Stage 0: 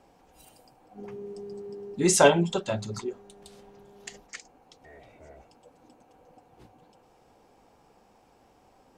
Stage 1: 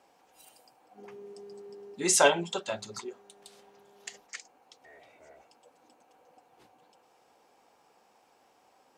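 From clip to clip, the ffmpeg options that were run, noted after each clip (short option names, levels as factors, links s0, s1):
-af "highpass=f=760:p=1"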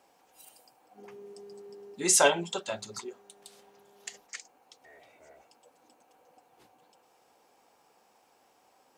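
-af "highshelf=f=8300:g=7,volume=0.891"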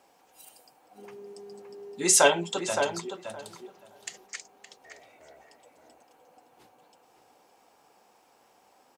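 -filter_complex "[0:a]asplit=2[s0][s1];[s1]adelay=567,lowpass=f=2300:p=1,volume=0.473,asplit=2[s2][s3];[s3]adelay=567,lowpass=f=2300:p=1,volume=0.16,asplit=2[s4][s5];[s5]adelay=567,lowpass=f=2300:p=1,volume=0.16[s6];[s0][s2][s4][s6]amix=inputs=4:normalize=0,volume=1.33"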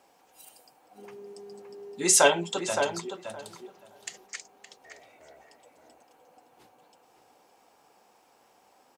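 -af anull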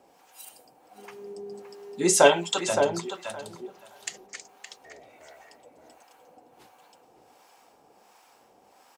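-filter_complex "[0:a]acrossover=split=720[s0][s1];[s0]aeval=exprs='val(0)*(1-0.7/2+0.7/2*cos(2*PI*1.4*n/s))':c=same[s2];[s1]aeval=exprs='val(0)*(1-0.7/2-0.7/2*cos(2*PI*1.4*n/s))':c=same[s3];[s2][s3]amix=inputs=2:normalize=0,volume=2.24"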